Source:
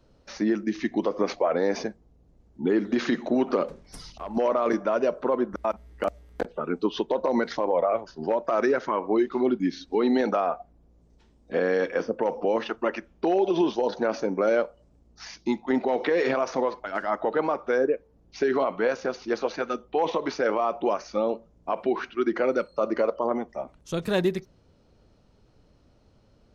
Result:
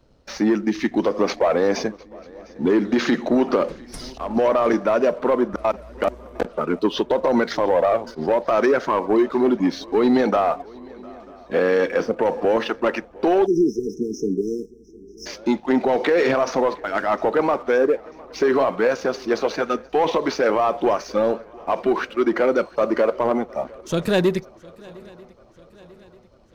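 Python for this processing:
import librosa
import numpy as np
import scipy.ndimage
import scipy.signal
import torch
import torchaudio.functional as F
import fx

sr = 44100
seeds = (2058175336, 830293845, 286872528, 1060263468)

y = fx.leveller(x, sr, passes=1)
y = fx.echo_swing(y, sr, ms=942, ratio=3, feedback_pct=51, wet_db=-24)
y = fx.spec_erase(y, sr, start_s=13.46, length_s=1.8, low_hz=470.0, high_hz=5100.0)
y = y * 10.0 ** (3.5 / 20.0)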